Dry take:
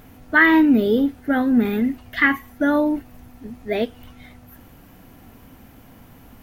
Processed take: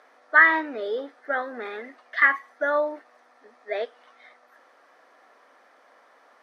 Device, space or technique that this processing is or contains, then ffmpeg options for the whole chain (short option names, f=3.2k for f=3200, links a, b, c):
phone speaker on a table: -af "highpass=f=460:w=0.5412,highpass=f=460:w=1.3066,equalizer=f=580:t=q:w=4:g=5,equalizer=f=1.2k:t=q:w=4:g=8,equalizer=f=1.8k:t=q:w=4:g=7,equalizer=f=2.8k:t=q:w=4:g=-8,equalizer=f=7.1k:t=q:w=4:g=-9,lowpass=f=7.5k:w=0.5412,lowpass=f=7.5k:w=1.3066,volume=-5.5dB"